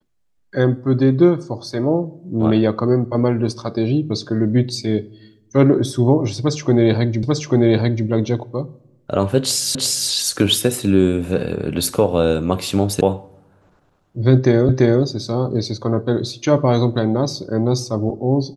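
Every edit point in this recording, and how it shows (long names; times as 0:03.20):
0:07.23: the same again, the last 0.84 s
0:09.75: the same again, the last 0.35 s
0:13.01: cut off before it has died away
0:14.69: the same again, the last 0.34 s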